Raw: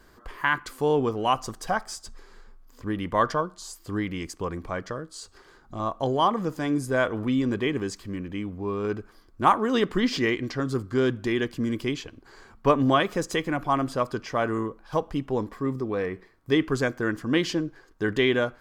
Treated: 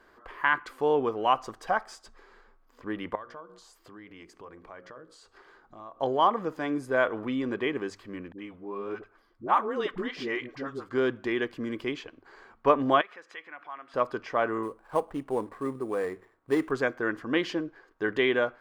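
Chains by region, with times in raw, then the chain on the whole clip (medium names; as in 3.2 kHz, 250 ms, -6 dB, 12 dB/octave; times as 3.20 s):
3.15–6.01 s: hum notches 60/120/180/240/300/360/420/480/540 Hz + compression 4:1, threshold -42 dBFS
8.32–10.89 s: phase dispersion highs, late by 66 ms, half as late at 500 Hz + flange 1.4 Hz, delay 1.4 ms, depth 5.3 ms, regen +66%
13.01–13.94 s: compression 2.5:1, threshold -34 dBFS + band-pass filter 2 kHz, Q 1.1
14.63–16.71 s: median filter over 15 samples + sample-rate reducer 9.2 kHz
whole clip: tone controls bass -13 dB, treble -14 dB; hum notches 50/100 Hz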